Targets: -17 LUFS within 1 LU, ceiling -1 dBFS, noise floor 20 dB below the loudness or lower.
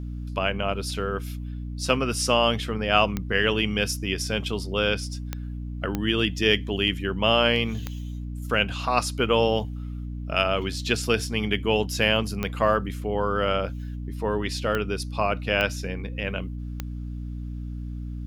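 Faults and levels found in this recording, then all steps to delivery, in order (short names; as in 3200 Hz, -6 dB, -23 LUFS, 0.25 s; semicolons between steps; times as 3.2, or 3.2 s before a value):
clicks 8; hum 60 Hz; harmonics up to 300 Hz; hum level -30 dBFS; loudness -25.5 LUFS; peak -5.0 dBFS; loudness target -17.0 LUFS
-> de-click; notches 60/120/180/240/300 Hz; gain +8.5 dB; limiter -1 dBFS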